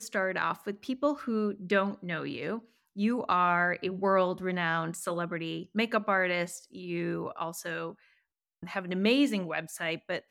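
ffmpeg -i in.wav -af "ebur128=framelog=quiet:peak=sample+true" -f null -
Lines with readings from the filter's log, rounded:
Integrated loudness:
  I:         -30.5 LUFS
  Threshold: -40.8 LUFS
Loudness range:
  LRA:         3.6 LU
  Threshold: -50.7 LUFS
  LRA low:   -32.7 LUFS
  LRA high:  -29.1 LUFS
Sample peak:
  Peak:      -13.4 dBFS
True peak:
  Peak:      -13.3 dBFS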